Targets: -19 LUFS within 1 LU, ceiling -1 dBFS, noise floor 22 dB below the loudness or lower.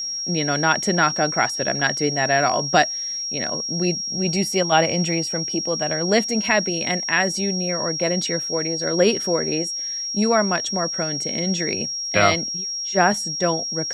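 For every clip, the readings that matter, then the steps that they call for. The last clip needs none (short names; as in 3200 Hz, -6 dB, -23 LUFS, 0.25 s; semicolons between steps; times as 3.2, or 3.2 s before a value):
steady tone 5600 Hz; tone level -25 dBFS; loudness -20.5 LUFS; peak -3.0 dBFS; loudness target -19.0 LUFS
-> notch 5600 Hz, Q 30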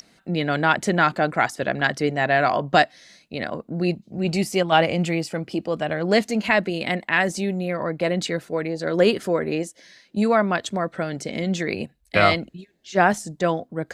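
steady tone none; loudness -22.5 LUFS; peak -2.5 dBFS; loudness target -19.0 LUFS
-> gain +3.5 dB; limiter -1 dBFS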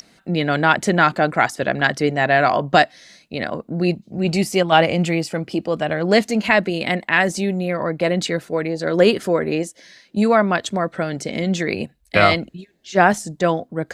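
loudness -19.0 LUFS; peak -1.0 dBFS; noise floor -59 dBFS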